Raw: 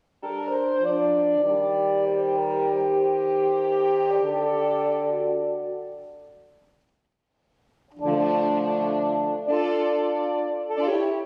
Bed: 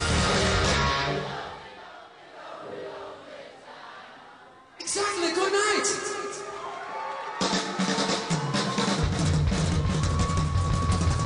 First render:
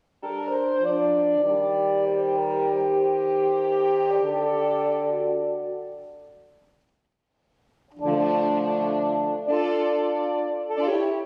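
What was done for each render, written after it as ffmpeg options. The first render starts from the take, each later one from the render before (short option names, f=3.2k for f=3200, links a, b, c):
-af anull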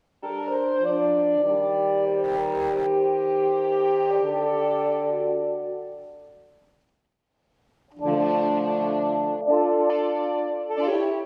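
-filter_complex "[0:a]asettb=1/sr,asplit=3[a][b][c];[a]atrim=end=2.244[d];[b]atrim=start=2.24:end=2.87,asetpts=PTS-STARTPTS,afade=t=in:d=0.004:c=qsin,afade=t=out:st=0.626:d=0.004:c=qsin,asoftclip=type=hard:threshold=-20dB[e];[c]atrim=start=2.866[f];[d][e]acrossfade=d=0.004:c1=hsin:c2=qsin[g];[g][f]acrossfade=d=0.004:c1=qsin:c2=hsin,asettb=1/sr,asplit=3[h][i][j];[h]atrim=end=9.414[k];[i]atrim=start=9.41:end=9.9,asetpts=PTS-STARTPTS,afade=t=in:d=0.004:c=qsin,afade=t=out:st=0.486:d=0.004:c=qsin,lowpass=f=860:t=q:w=1.9[l];[j]atrim=start=9.896[m];[k][l]acrossfade=d=0.004:c1=hsin:c2=qsin[n];[n][m]acrossfade=d=0.004:c1=qsin:c2=hsin"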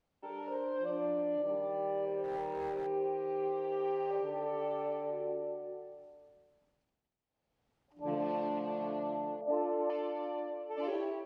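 -af "volume=-12.5dB"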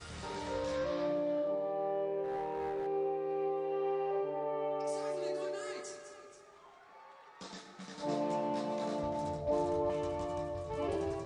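-filter_complex "[1:a]volume=-22dB[a];[0:a][a]amix=inputs=2:normalize=0"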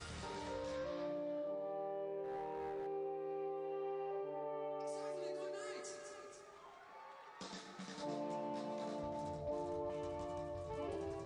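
-af "acompressor=threshold=-47dB:ratio=2"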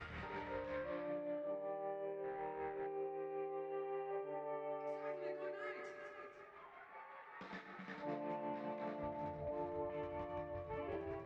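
-af "tremolo=f=5.3:d=0.39,lowpass=f=2.1k:t=q:w=2.2"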